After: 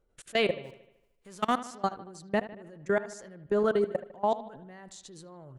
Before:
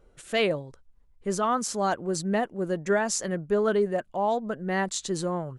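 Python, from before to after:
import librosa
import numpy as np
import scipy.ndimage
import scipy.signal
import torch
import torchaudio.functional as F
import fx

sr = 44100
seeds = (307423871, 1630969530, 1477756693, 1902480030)

y = fx.envelope_flatten(x, sr, power=0.6, at=(0.63, 1.58), fade=0.02)
y = fx.level_steps(y, sr, step_db=24)
y = fx.echo_bbd(y, sr, ms=76, stages=2048, feedback_pct=54, wet_db=-15)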